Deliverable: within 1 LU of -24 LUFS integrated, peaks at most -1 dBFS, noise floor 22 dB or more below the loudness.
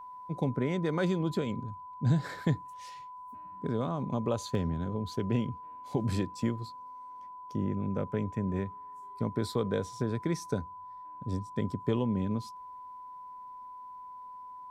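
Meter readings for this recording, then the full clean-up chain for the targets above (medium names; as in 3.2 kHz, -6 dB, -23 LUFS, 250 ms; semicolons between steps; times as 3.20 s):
dropouts 1; longest dropout 1.3 ms; steady tone 1 kHz; tone level -43 dBFS; loudness -33.0 LUFS; peak level -15.0 dBFS; loudness target -24.0 LUFS
-> interpolate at 4.55 s, 1.3 ms; band-stop 1 kHz, Q 30; trim +9 dB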